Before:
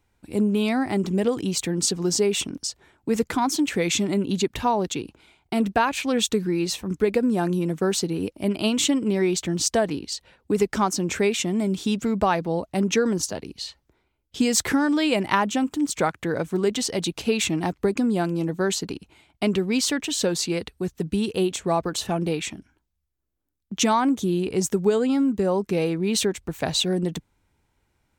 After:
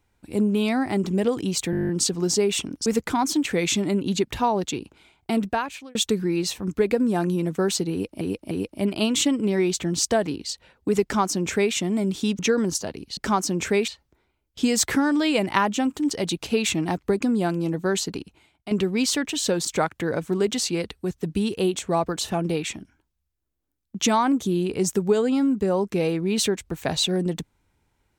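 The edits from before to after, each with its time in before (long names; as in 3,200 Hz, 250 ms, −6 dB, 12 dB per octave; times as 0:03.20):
0:01.71: stutter 0.02 s, 10 plays
0:02.68–0:03.09: remove
0:05.55–0:06.18: fade out
0:08.14–0:08.44: repeat, 3 plays
0:10.66–0:11.37: duplicate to 0:13.65
0:12.02–0:12.87: remove
0:15.88–0:16.86: move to 0:20.40
0:18.92–0:19.46: fade out, to −11.5 dB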